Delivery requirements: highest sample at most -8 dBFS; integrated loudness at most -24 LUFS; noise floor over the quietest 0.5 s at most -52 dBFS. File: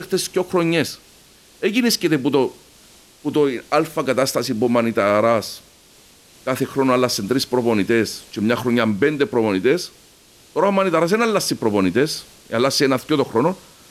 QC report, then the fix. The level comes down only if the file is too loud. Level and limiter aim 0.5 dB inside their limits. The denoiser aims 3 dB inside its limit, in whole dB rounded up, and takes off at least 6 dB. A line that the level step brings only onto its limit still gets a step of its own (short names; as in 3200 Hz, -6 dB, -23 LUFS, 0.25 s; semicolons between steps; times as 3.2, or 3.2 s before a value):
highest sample -5.5 dBFS: fail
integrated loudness -19.5 LUFS: fail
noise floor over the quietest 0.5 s -50 dBFS: fail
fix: gain -5 dB